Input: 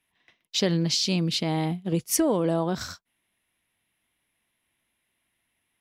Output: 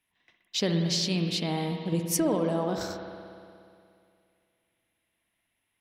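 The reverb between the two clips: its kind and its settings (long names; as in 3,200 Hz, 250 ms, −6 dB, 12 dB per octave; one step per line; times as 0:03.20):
spring reverb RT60 2.4 s, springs 59 ms, chirp 65 ms, DRR 4 dB
level −3.5 dB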